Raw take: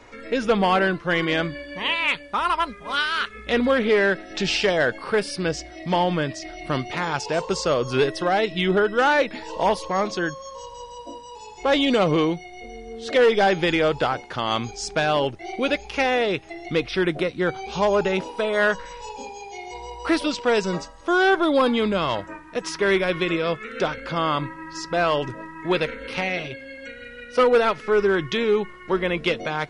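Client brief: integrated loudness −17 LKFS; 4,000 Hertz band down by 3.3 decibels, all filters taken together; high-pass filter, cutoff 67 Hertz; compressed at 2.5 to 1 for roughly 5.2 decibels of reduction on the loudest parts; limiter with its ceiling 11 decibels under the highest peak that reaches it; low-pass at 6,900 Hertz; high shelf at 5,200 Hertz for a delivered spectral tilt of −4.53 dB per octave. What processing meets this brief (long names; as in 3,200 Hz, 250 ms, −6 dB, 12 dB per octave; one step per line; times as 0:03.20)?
high-pass filter 67 Hz
low-pass filter 6,900 Hz
parametric band 4,000 Hz −6.5 dB
high-shelf EQ 5,200 Hz +5.5 dB
downward compressor 2.5 to 1, threshold −22 dBFS
level +15.5 dB
brickwall limiter −7.5 dBFS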